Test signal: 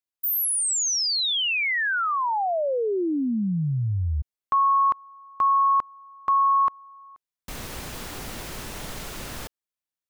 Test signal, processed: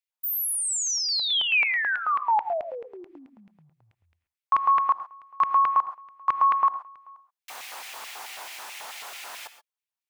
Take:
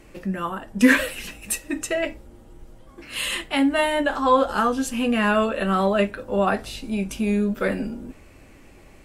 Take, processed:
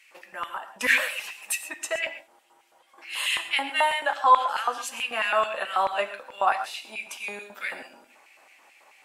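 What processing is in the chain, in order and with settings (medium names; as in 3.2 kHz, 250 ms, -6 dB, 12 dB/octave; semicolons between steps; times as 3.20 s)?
LFO high-pass square 4.6 Hz 850–2300 Hz; gated-style reverb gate 150 ms rising, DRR 11 dB; trim -3.5 dB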